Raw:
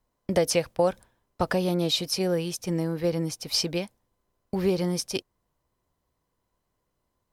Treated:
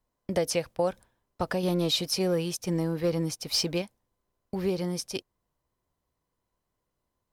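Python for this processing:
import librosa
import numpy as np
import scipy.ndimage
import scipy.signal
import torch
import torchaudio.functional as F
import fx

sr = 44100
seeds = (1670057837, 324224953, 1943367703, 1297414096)

y = fx.leveller(x, sr, passes=1, at=(1.63, 3.82))
y = y * librosa.db_to_amplitude(-4.0)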